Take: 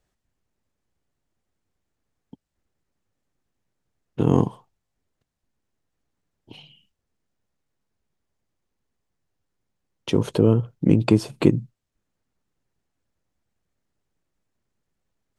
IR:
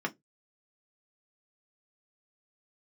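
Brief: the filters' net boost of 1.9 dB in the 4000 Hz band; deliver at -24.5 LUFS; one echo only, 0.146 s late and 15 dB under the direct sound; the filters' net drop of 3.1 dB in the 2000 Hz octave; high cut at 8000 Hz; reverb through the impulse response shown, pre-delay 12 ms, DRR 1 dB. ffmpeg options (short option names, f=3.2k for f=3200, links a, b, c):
-filter_complex "[0:a]lowpass=8k,equalizer=f=2k:t=o:g=-6.5,equalizer=f=4k:t=o:g=5,aecho=1:1:146:0.178,asplit=2[a][b];[1:a]atrim=start_sample=2205,adelay=12[c];[b][c]afir=irnorm=-1:irlink=0,volume=-7dB[d];[a][d]amix=inputs=2:normalize=0,volume=-6.5dB"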